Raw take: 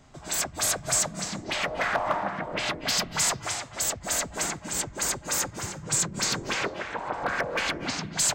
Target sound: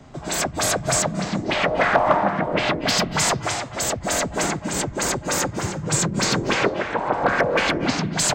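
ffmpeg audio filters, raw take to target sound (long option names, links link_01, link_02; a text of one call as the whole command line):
ffmpeg -i in.wav -filter_complex "[0:a]asettb=1/sr,asplit=3[link_01][link_02][link_03];[link_01]atrim=end=1.024[link_04];[link_02]atrim=start=1.02:end=2.74,asetpts=PTS-STARTPTS,afade=type=in:duration=0.004:curve=qsin,afade=type=out:start_time=1.716:duration=0.004:curve=qsin,acrossover=split=4700[link_05][link_06];[link_06]acompressor=threshold=-45dB:ratio=4:attack=1:release=60[link_07];[link_05][link_07]amix=inputs=2:normalize=0[link_08];[link_03]atrim=start=2.736[link_09];[link_04][link_08]acrossfade=duration=0.004:curve1=hsin:curve2=qsin[link_10];[link_10][link_09]acrossfade=duration=0.004:curve1=qsin:curve2=hsin,highshelf=frequency=6800:gain=-9.5,acrossover=split=100|730|3100[link_11][link_12][link_13][link_14];[link_12]acontrast=29[link_15];[link_11][link_15][link_13][link_14]amix=inputs=4:normalize=0,volume=7dB" out.wav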